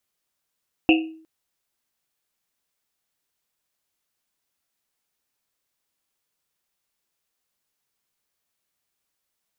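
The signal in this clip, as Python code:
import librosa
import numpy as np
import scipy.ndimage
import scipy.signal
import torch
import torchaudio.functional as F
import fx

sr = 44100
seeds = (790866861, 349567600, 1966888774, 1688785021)

y = fx.risset_drum(sr, seeds[0], length_s=0.36, hz=320.0, decay_s=0.54, noise_hz=2700.0, noise_width_hz=330.0, noise_pct=30)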